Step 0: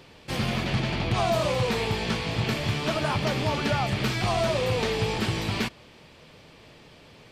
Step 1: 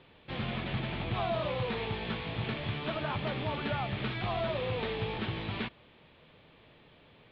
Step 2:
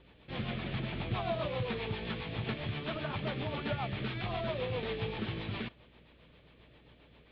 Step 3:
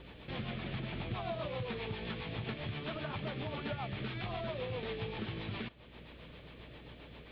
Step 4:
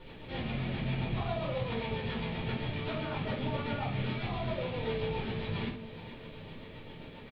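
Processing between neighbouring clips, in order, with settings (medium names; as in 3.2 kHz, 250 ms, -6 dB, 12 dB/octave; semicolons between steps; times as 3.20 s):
elliptic low-pass 3.7 kHz, stop band 60 dB; trim -7 dB
rotary cabinet horn 7.5 Hz; hum 60 Hz, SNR 27 dB
compression 2:1, threshold -55 dBFS, peak gain reduction 14 dB; trim +8.5 dB
feedback delay 439 ms, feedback 57%, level -14.5 dB; simulated room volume 290 m³, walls furnished, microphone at 4.5 m; trim -4.5 dB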